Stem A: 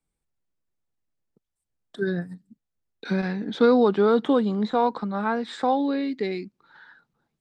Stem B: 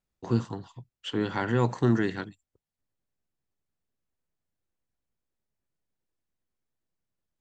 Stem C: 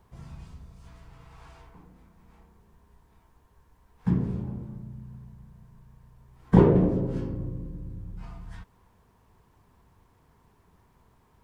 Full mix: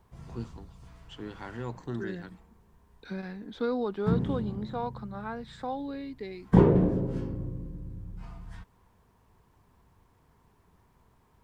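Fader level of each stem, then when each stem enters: -12.0, -12.5, -2.0 dB; 0.00, 0.05, 0.00 s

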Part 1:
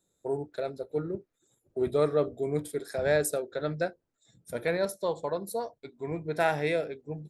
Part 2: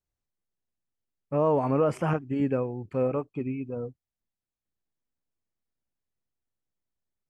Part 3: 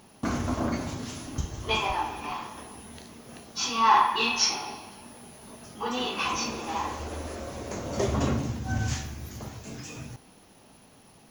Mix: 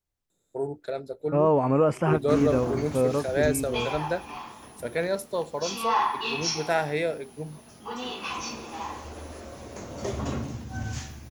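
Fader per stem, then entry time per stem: +1.0, +2.5, -4.5 dB; 0.30, 0.00, 2.05 s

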